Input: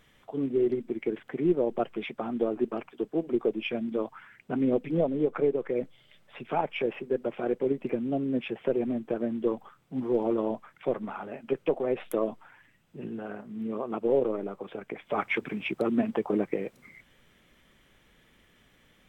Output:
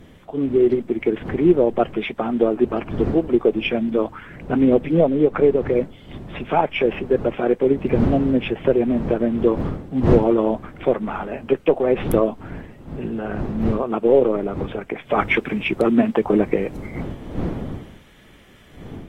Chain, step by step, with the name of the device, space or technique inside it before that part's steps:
smartphone video outdoors (wind on the microphone 260 Hz −40 dBFS; automatic gain control gain up to 4 dB; level +6 dB; AAC 48 kbit/s 44,100 Hz)

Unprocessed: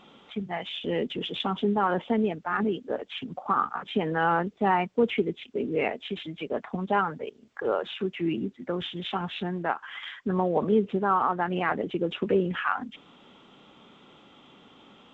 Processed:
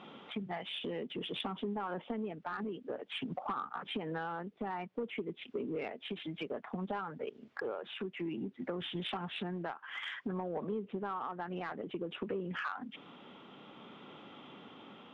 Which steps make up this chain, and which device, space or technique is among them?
AM radio (band-pass filter 110–3,200 Hz; downward compressor 8 to 1, threshold −36 dBFS, peak gain reduction 18 dB; soft clipping −29 dBFS, distortion −21 dB; amplitude tremolo 0.56 Hz, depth 19%)
level +2.5 dB

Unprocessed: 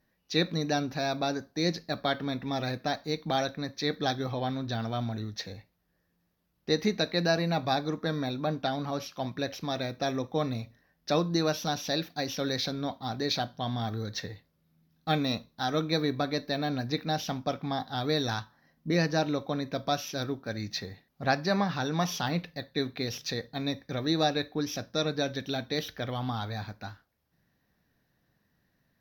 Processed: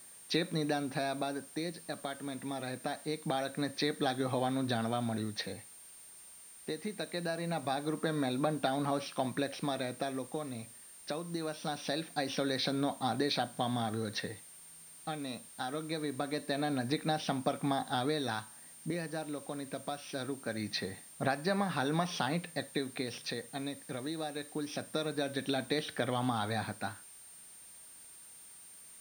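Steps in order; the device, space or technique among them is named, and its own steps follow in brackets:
medium wave at night (band-pass filter 160–3,900 Hz; downward compressor, threshold −34 dBFS, peak gain reduction 13.5 dB; amplitude tremolo 0.23 Hz, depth 59%; steady tone 9,000 Hz −58 dBFS; white noise bed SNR 23 dB)
level +6 dB

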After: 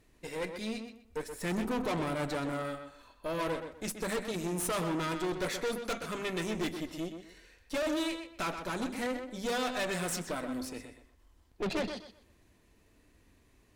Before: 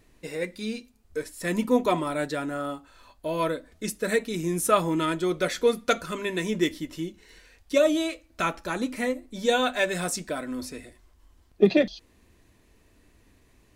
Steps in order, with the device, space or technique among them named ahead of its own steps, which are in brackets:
0:01.28–0:02.52: low-shelf EQ 140 Hz +10 dB
rockabilly slapback (tube saturation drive 30 dB, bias 0.8; tape delay 126 ms, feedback 27%, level −6.5 dB, low-pass 4,000 Hz)

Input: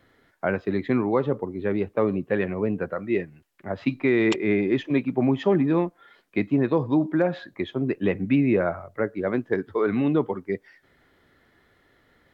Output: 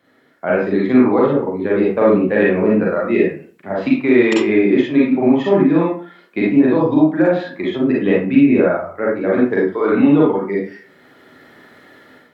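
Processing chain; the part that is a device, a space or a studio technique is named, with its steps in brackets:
far laptop microphone (convolution reverb RT60 0.45 s, pre-delay 37 ms, DRR −5 dB; high-pass filter 160 Hz 12 dB per octave; automatic gain control)
level −1 dB

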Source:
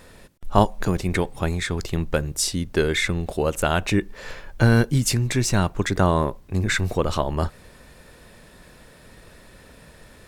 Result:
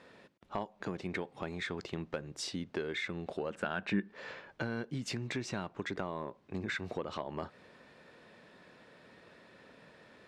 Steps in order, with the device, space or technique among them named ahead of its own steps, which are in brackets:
AM radio (band-pass filter 190–3,800 Hz; downward compressor 5 to 1, threshold −26 dBFS, peak gain reduction 14 dB; soft clipping −14.5 dBFS, distortion −22 dB)
0:03.50–0:04.11: thirty-one-band graphic EQ 200 Hz +11 dB, 1,600 Hz +10 dB, 6,300 Hz −6 dB, 12,500 Hz −10 dB
level −7 dB

